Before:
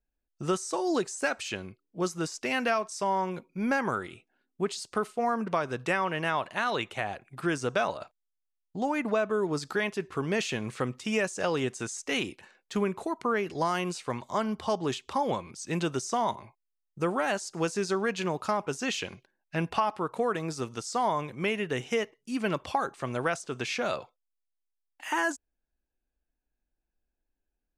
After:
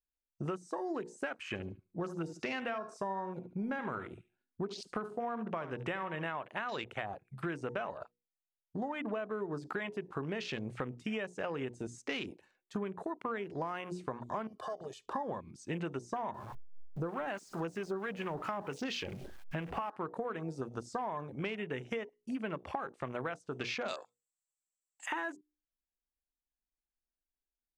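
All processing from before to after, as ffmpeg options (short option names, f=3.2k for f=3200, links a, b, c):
-filter_complex "[0:a]asettb=1/sr,asplit=3[a][b][c];[a]atrim=end=1.484[d];[b]atrim=start=1.48:end=6.27,asetpts=PTS-STARTPTS,afade=t=in:d=0.004:c=qsin,afade=t=out:st=4.786:d=0.004:c=qsin,lowshelf=f=200:g=3,aecho=1:1:72|144|216:0.224|0.0716|0.0229,atrim=end_sample=211239[e];[c]atrim=start=6.266[f];[d][e]acrossfade=d=0.004:c1=hsin:c2=qsin[g];[g][f]acrossfade=d=0.004:c1=qsin:c2=hsin,asettb=1/sr,asplit=3[h][i][j];[h]atrim=end=14.474[k];[i]atrim=start=14.47:end=15.06,asetpts=PTS-STARTPTS,afade=t=in:d=0.004:c=qsin,afade=t=out:st=0.586:d=0.004:c=qsin,acompressor=threshold=-38dB:ratio=8:attack=3.2:release=140:knee=1:detection=peak,bass=f=250:g=-9,treble=f=4k:g=7,aecho=1:1:1.7:0.85,atrim=end_sample=26019[l];[j]atrim=start=15.056[m];[k][l]acrossfade=d=0.004:c1=hsin:c2=qsin[n];[n][m]acrossfade=d=0.004:c1=qsin:c2=hsin,asettb=1/sr,asplit=3[o][p][q];[o]atrim=end=16.344[r];[p]atrim=start=16.34:end=19.9,asetpts=PTS-STARTPTS,afade=t=in:d=0.004:c=qsin,afade=t=out:st=3.556:d=0.004:c=qsin,aeval=exprs='val(0)+0.5*0.0178*sgn(val(0))':c=same,acrossover=split=820[s][t];[s]aeval=exprs='val(0)*(1-0.5/2+0.5/2*cos(2*PI*4.4*n/s))':c=same[u];[t]aeval=exprs='val(0)*(1-0.5/2-0.5/2*cos(2*PI*4.4*n/s))':c=same[v];[u][v]amix=inputs=2:normalize=0[w];[q]atrim=start=19.896[x];[r][w]acrossfade=d=0.004:c1=hsin:c2=qsin[y];[y][x]acrossfade=d=0.004:c1=qsin:c2=hsin,asettb=1/sr,asplit=3[z][aa][ab];[z]atrim=end=23.884[ac];[aa]atrim=start=23.88:end=25.06,asetpts=PTS-STARTPTS,afade=t=in:d=0.004:c=qsin,afade=t=out:st=1.176:d=0.004:c=qsin,lowpass=f=7.7k:t=q:w=12,aemphasis=mode=production:type=bsi[ad];[ab]atrim=start=25.056[ae];[ac][ad]acrossfade=d=0.004:c1=hsin:c2=qsin[af];[af][ae]acrossfade=d=0.004:c1=qsin:c2=hsin,bandreject=f=60:t=h:w=6,bandreject=f=120:t=h:w=6,bandreject=f=180:t=h:w=6,bandreject=f=240:t=h:w=6,bandreject=f=300:t=h:w=6,bandreject=f=360:t=h:w=6,bandreject=f=420:t=h:w=6,bandreject=f=480:t=h:w=6,afwtdn=0.0112,acompressor=threshold=-37dB:ratio=6,volume=2dB"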